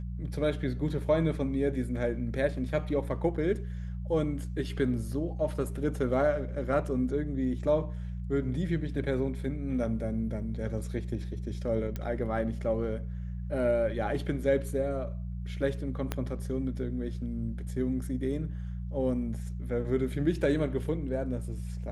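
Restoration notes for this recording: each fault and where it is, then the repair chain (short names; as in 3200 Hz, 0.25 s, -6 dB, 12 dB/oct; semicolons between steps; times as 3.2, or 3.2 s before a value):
hum 60 Hz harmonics 3 -36 dBFS
11.96 pop -21 dBFS
16.12 pop -16 dBFS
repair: de-click; de-hum 60 Hz, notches 3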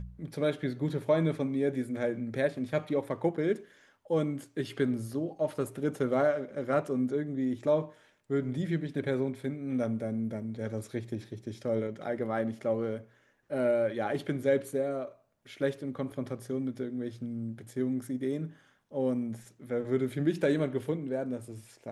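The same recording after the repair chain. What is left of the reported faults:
11.96 pop
16.12 pop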